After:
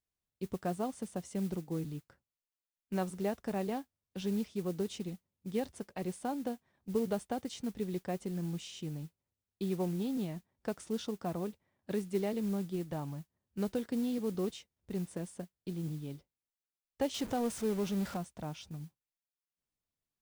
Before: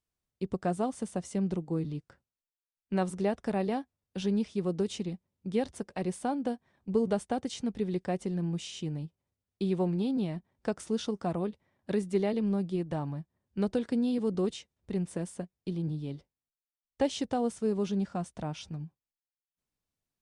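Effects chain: 17.14–18.17 s: jump at every zero crossing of -35.5 dBFS; modulation noise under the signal 22 dB; trim -5 dB

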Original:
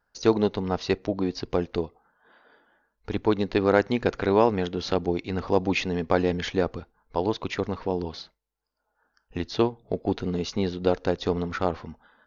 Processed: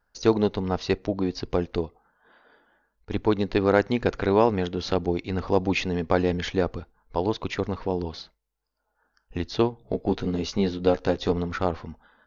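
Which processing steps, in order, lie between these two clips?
bass shelf 70 Hz +7.5 dB; 1.74–3.11 s: slow attack 123 ms; 9.79–11.32 s: doubling 15 ms -5.5 dB

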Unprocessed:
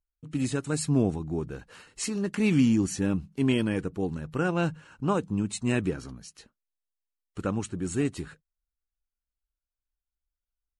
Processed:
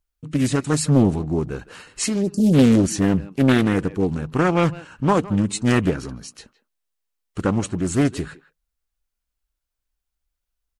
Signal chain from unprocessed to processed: spectral selection erased 2.21–2.54 s, 410–4400 Hz; speakerphone echo 160 ms, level -17 dB; loudspeaker Doppler distortion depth 0.62 ms; trim +8.5 dB

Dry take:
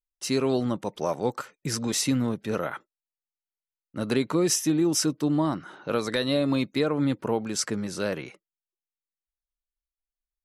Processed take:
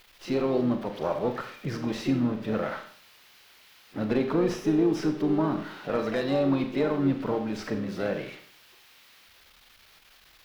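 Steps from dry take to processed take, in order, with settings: zero-crossing glitches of -24 dBFS; Chebyshev shaper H 2 -14 dB, 3 -33 dB, 6 -44 dB, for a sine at -12 dBFS; harmony voices +5 st -10 dB; distance through air 340 m; Schroeder reverb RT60 0.53 s, combs from 29 ms, DRR 6 dB; slew-rate limiter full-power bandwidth 82 Hz

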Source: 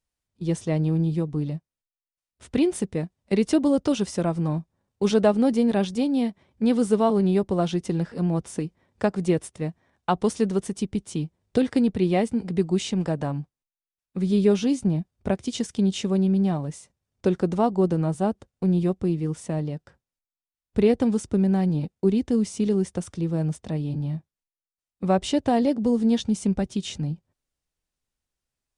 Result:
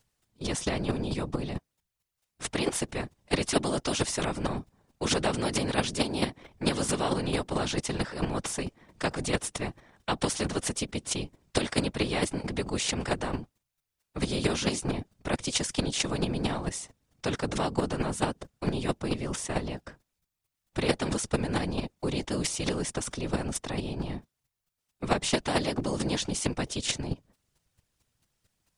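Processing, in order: square tremolo 4.5 Hz, depth 65%, duty 10%; whisper effect; spectrum-flattening compressor 2:1; trim -1.5 dB

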